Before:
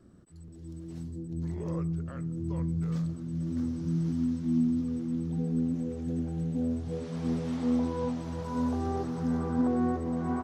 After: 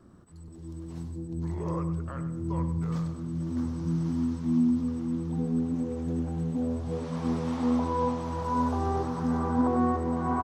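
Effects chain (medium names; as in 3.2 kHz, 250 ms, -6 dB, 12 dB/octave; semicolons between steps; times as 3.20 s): peaking EQ 1 kHz +9.5 dB 0.75 oct; on a send: feedback delay 99 ms, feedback 38%, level -10 dB; on the sum: trim +1.5 dB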